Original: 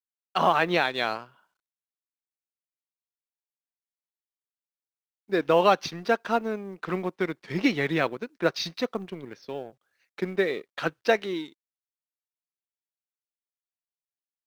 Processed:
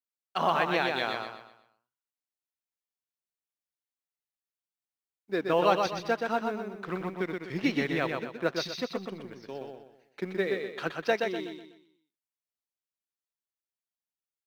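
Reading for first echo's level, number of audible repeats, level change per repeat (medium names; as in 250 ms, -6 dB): -4.5 dB, 4, -8.5 dB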